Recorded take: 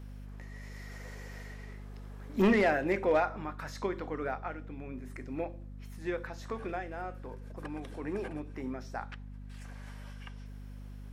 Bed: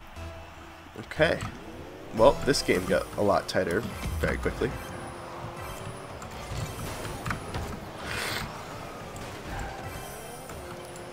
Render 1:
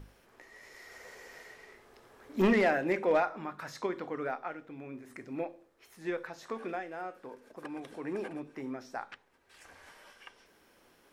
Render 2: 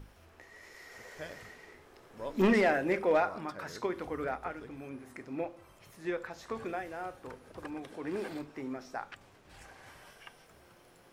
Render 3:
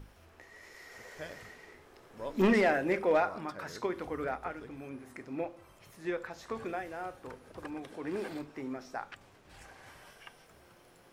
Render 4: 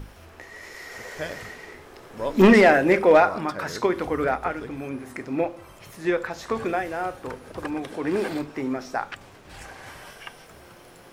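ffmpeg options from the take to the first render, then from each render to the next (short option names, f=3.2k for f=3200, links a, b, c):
-af "bandreject=f=50:t=h:w=6,bandreject=f=100:t=h:w=6,bandreject=f=150:t=h:w=6,bandreject=f=200:t=h:w=6,bandreject=f=250:t=h:w=6"
-filter_complex "[1:a]volume=-21.5dB[a];[0:a][a]amix=inputs=2:normalize=0"
-af anull
-af "volume=11.5dB"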